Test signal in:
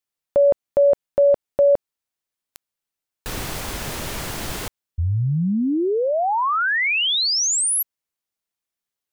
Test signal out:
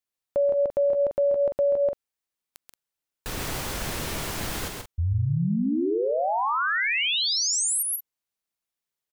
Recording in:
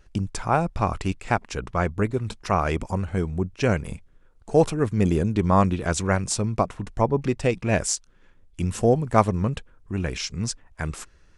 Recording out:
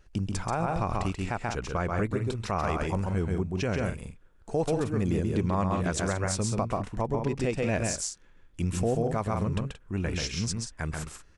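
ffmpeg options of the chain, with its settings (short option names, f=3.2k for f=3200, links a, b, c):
-af "aecho=1:1:134.1|177.8:0.631|0.282,alimiter=limit=-14.5dB:level=0:latency=1:release=93,volume=-3.5dB"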